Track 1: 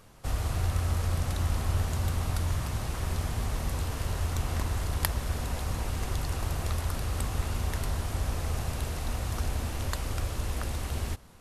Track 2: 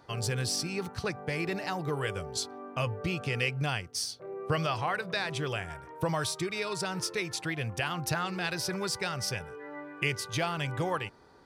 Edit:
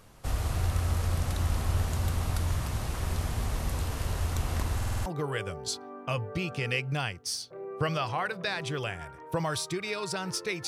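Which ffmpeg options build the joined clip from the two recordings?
ffmpeg -i cue0.wav -i cue1.wav -filter_complex "[0:a]apad=whole_dur=10.67,atrim=end=10.67,asplit=6[link_01][link_02][link_03][link_04][link_05][link_06];[link_01]atrim=end=4.812[link_07];[link_02]atrim=start=4.758:end=4.812[link_08];[link_03]atrim=start=4.758:end=4.812[link_09];[link_04]atrim=start=4.758:end=4.812[link_10];[link_05]atrim=start=4.758:end=4.812[link_11];[link_06]atrim=start=4.758:end=4.812[link_12];[1:a]atrim=start=1.748:end=7.36[link_13];[link_07][link_08]acrossfade=duration=0.004:curve1=hsin:curve2=hsin[link_14];[link_14][link_09]acrossfade=duration=0.004:curve1=hsin:curve2=hsin[link_15];[link_15][link_10]acrossfade=duration=0.004:curve1=hsin:curve2=hsin[link_16];[link_16][link_11]acrossfade=duration=0.004:curve1=hsin:curve2=hsin[link_17];[link_17][link_12]acrossfade=duration=0.004:curve1=hsin:curve2=hsin[link_18];[link_18][link_13]acrossfade=duration=0.004:curve1=hsin:curve2=hsin" out.wav

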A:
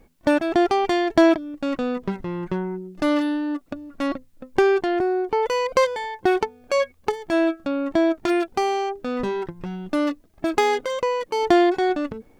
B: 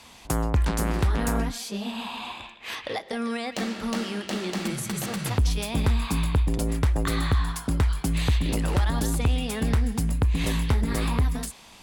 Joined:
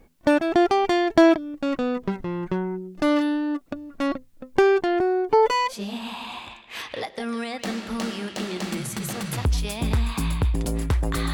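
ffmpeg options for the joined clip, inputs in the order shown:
ffmpeg -i cue0.wav -i cue1.wav -filter_complex "[0:a]asettb=1/sr,asplit=3[link_01][link_02][link_03];[link_01]atrim=end=5.294[link_04];[link_02]atrim=start=5.29:end=5.74,asetpts=PTS-STARTPTS,afade=type=in:duration=0.004:curve=qsin,afade=type=out:start_time=0.446:duration=0.004:curve=qsin,aecho=1:1:7:0.86,atrim=end_sample=19845[link_05];[link_03]atrim=start=5.736[link_06];[link_04][link_05]acrossfade=duration=0.004:curve1=hsin:curve2=qsin[link_07];[link_07][link_06]acrossfade=duration=0.004:curve1=qsin:curve2=hsin,apad=whole_dur=11.33,atrim=end=11.33,atrim=end=5.74,asetpts=PTS-STARTPTS[link_08];[1:a]atrim=start=1.61:end=7.26,asetpts=PTS-STARTPTS[link_09];[link_08][link_09]acrossfade=duration=0.06:curve1=tri:curve2=tri" out.wav

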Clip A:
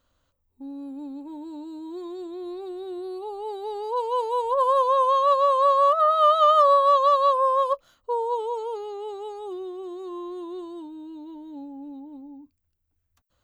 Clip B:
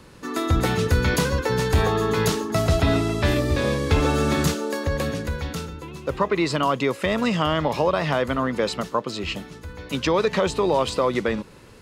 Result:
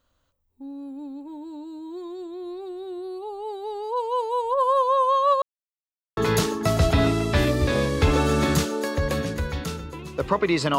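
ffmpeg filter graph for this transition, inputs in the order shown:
ffmpeg -i cue0.wav -i cue1.wav -filter_complex "[0:a]apad=whole_dur=10.78,atrim=end=10.78,asplit=2[link_01][link_02];[link_01]atrim=end=5.42,asetpts=PTS-STARTPTS,afade=type=out:start_time=5.416:duration=0.004:curve=hsin[link_03];[link_02]atrim=start=5.42:end=6.17,asetpts=PTS-STARTPTS,volume=0[link_04];[1:a]atrim=start=2.06:end=6.67,asetpts=PTS-STARTPTS,afade=type=in:duration=0.004:curve=hsin[link_05];[link_03][link_04][link_05]concat=n=3:v=0:a=1" out.wav

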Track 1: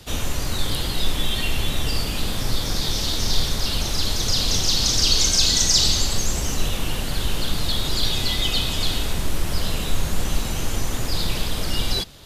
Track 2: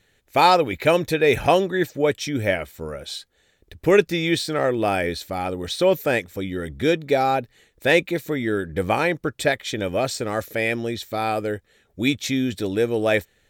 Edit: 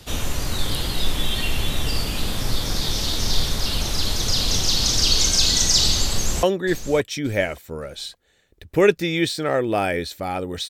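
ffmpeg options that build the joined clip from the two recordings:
ffmpeg -i cue0.wav -i cue1.wav -filter_complex "[0:a]apad=whole_dur=10.69,atrim=end=10.69,atrim=end=6.432[link_01];[1:a]atrim=start=1.528:end=5.79[link_02];[link_01][link_02]acrossfade=duration=0.004:curve1=hsin:curve2=hsin,asplit=2[link_03][link_04];[link_04]afade=type=in:start_time=6.1:duration=0.01,afade=type=out:start_time=6.43:duration=0.01,aecho=0:1:570|1140|1710:0.237137|0.0592843|0.0148211[link_05];[link_03][link_05]amix=inputs=2:normalize=0" out.wav

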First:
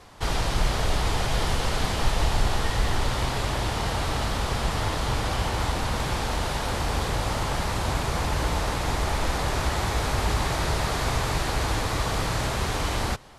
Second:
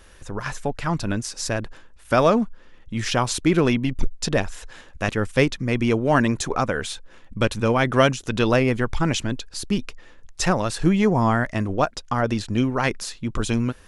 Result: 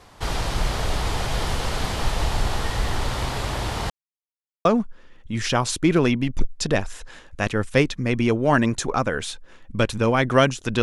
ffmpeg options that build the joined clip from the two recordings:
ffmpeg -i cue0.wav -i cue1.wav -filter_complex "[0:a]apad=whole_dur=10.82,atrim=end=10.82,asplit=2[link_01][link_02];[link_01]atrim=end=3.9,asetpts=PTS-STARTPTS,afade=type=out:start_time=3.896:duration=0.004:curve=hsin[link_03];[link_02]atrim=start=3.9:end=4.65,asetpts=PTS-STARTPTS,volume=0[link_04];[1:a]atrim=start=2.27:end=8.44,asetpts=PTS-STARTPTS,afade=type=in:duration=0.004:curve=hsin[link_05];[link_03][link_04][link_05]concat=n=3:v=0:a=1" out.wav

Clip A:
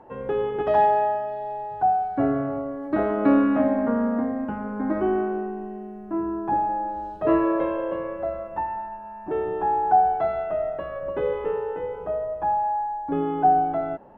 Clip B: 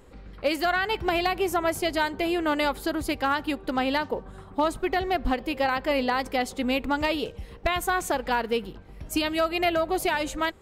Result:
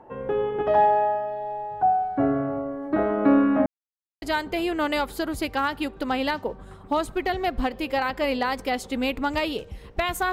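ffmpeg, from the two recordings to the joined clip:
ffmpeg -i cue0.wav -i cue1.wav -filter_complex "[0:a]apad=whole_dur=10.32,atrim=end=10.32,asplit=2[link_01][link_02];[link_01]atrim=end=3.66,asetpts=PTS-STARTPTS,afade=type=out:start_time=3.656:duration=0.004:curve=hsin[link_03];[link_02]atrim=start=3.66:end=4.22,asetpts=PTS-STARTPTS,volume=0[link_04];[1:a]atrim=start=1.89:end=7.99,asetpts=PTS-STARTPTS,afade=type=in:duration=0.004:curve=hsin[link_05];[link_03][link_04][link_05]concat=n=3:v=0:a=1" out.wav

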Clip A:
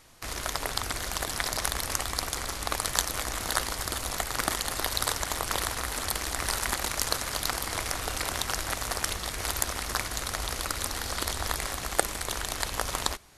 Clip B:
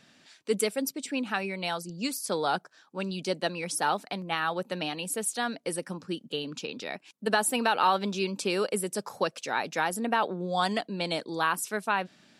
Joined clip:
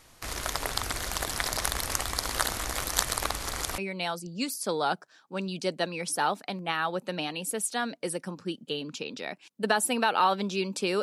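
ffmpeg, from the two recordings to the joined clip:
ffmpeg -i cue0.wav -i cue1.wav -filter_complex "[0:a]apad=whole_dur=11.02,atrim=end=11.02,asplit=2[link_01][link_02];[link_01]atrim=end=2.202[link_03];[link_02]atrim=start=2.198:end=3.782,asetpts=PTS-STARTPTS,areverse[link_04];[1:a]atrim=start=1.408:end=8.65[link_05];[link_03][link_04]acrossfade=duration=0.004:curve1=hsin:curve2=hsin[link_06];[link_06][link_05]acrossfade=duration=0.004:curve1=hsin:curve2=hsin" out.wav

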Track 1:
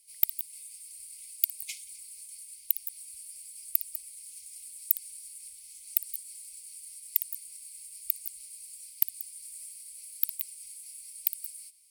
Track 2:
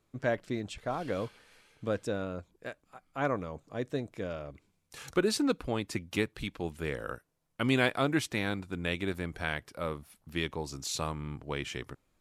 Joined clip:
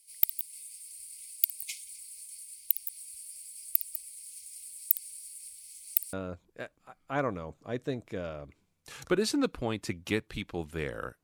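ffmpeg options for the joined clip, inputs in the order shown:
ffmpeg -i cue0.wav -i cue1.wav -filter_complex "[0:a]apad=whole_dur=11.23,atrim=end=11.23,atrim=end=6.132[link_01];[1:a]atrim=start=2.188:end=7.29[link_02];[link_01][link_02]acrossfade=duration=0.004:curve1=hsin:curve2=hsin" out.wav

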